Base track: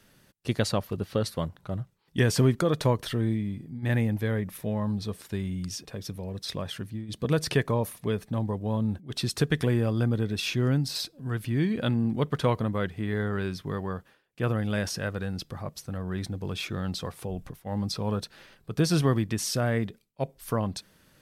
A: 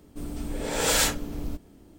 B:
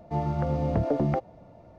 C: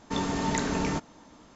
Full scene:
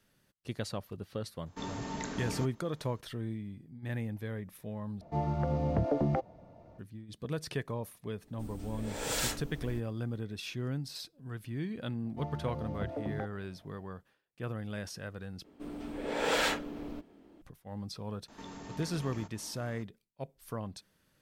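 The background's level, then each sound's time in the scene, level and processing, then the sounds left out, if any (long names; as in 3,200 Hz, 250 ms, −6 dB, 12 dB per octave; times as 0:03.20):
base track −11 dB
0:01.46: mix in C −10.5 dB
0:05.01: overwrite with B −4 dB
0:08.23: mix in A −10.5 dB
0:12.06: mix in B −12.5 dB
0:15.44: overwrite with A −2.5 dB + three-way crossover with the lows and the highs turned down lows −15 dB, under 200 Hz, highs −16 dB, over 3,800 Hz
0:18.28: mix in C −2.5 dB + downward compressor 2.5 to 1, threshold −48 dBFS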